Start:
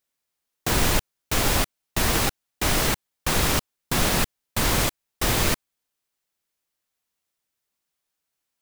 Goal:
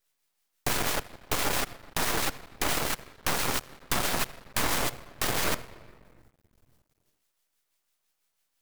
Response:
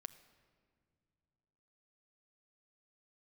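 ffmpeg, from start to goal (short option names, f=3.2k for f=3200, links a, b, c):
-filter_complex "[0:a]acrossover=split=1400[a][b];[a]aeval=exprs='val(0)*(1-0.5/2+0.5/2*cos(2*PI*6*n/s))':c=same[c];[b]aeval=exprs='val(0)*(1-0.5/2-0.5/2*cos(2*PI*6*n/s))':c=same[d];[c][d]amix=inputs=2:normalize=0,acrossover=split=150|410|1800[e][f][g][h];[e]acompressor=threshold=-37dB:ratio=4[i];[f]acompressor=threshold=-39dB:ratio=4[j];[g]acompressor=threshold=-36dB:ratio=4[k];[h]acompressor=threshold=-38dB:ratio=4[l];[i][j][k][l]amix=inputs=4:normalize=0,lowshelf=f=420:g=-7.5,asplit=2[m][n];[1:a]atrim=start_sample=2205,asetrate=40572,aresample=44100[o];[n][o]afir=irnorm=-1:irlink=0,volume=12.5dB[p];[m][p]amix=inputs=2:normalize=0,aeval=exprs='max(val(0),0)':c=same"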